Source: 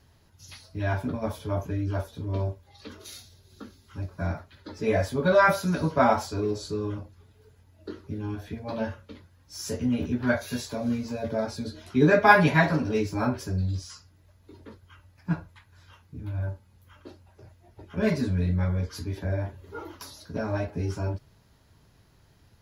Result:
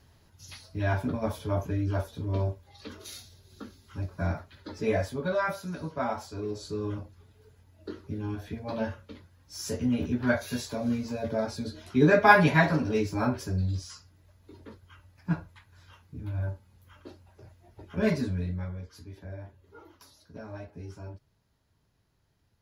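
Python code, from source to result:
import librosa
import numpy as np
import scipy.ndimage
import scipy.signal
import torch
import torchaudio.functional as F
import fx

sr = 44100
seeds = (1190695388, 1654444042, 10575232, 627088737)

y = fx.gain(x, sr, db=fx.line((4.75, 0.0), (5.46, -10.0), (6.14, -10.0), (6.93, -1.0), (18.11, -1.0), (18.84, -12.5)))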